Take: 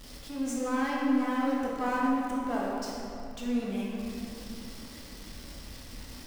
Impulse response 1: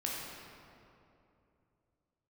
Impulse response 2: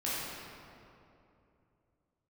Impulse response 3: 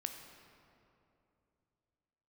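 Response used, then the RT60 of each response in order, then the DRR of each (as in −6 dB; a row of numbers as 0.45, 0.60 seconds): 1; 2.8, 2.8, 2.8 seconds; −4.5, −9.5, 4.5 decibels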